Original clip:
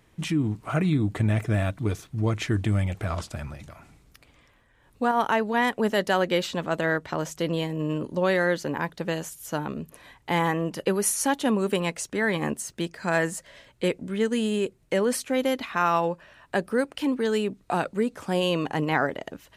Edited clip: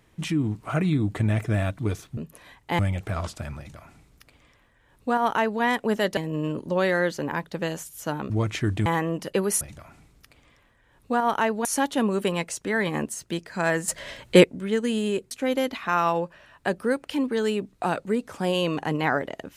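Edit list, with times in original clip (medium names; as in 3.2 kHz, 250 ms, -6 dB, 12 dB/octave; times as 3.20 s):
2.17–2.73 s: swap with 9.76–10.38 s
3.52–5.56 s: copy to 11.13 s
6.11–7.63 s: delete
13.36–13.92 s: gain +11 dB
14.79–15.19 s: delete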